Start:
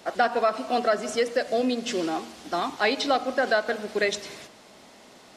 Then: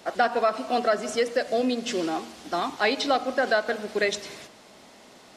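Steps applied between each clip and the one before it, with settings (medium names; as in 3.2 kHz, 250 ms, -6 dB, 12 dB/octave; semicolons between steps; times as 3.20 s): no audible change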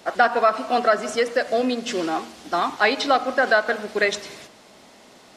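dynamic bell 1.3 kHz, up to +6 dB, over -37 dBFS, Q 0.85; trim +1.5 dB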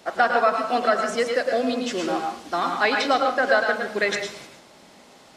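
reverberation RT60 0.35 s, pre-delay 99 ms, DRR 3 dB; trim -2.5 dB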